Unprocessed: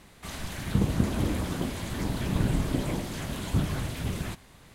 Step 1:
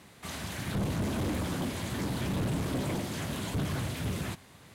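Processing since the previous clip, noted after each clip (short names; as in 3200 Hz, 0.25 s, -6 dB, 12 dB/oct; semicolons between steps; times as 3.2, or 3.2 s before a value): HPF 73 Hz 24 dB/oct; hard clip -27.5 dBFS, distortion -8 dB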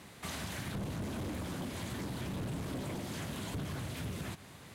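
compressor 10:1, threshold -38 dBFS, peak gain reduction 9.5 dB; on a send at -17.5 dB: reverb RT60 0.75 s, pre-delay 0.11 s; on the sum: gain +1.5 dB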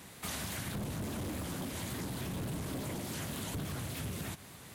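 high shelf 8300 Hz +10.5 dB; shaped vibrato saw up 3.5 Hz, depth 100 cents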